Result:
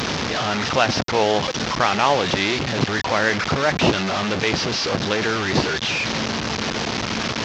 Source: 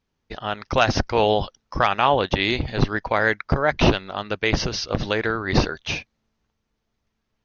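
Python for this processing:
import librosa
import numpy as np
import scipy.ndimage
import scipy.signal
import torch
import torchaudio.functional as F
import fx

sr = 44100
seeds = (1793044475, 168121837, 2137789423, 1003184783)

y = fx.delta_mod(x, sr, bps=32000, step_db=-16.0)
y = scipy.signal.sosfilt(scipy.signal.butter(2, 120.0, 'highpass', fs=sr, output='sos'), y)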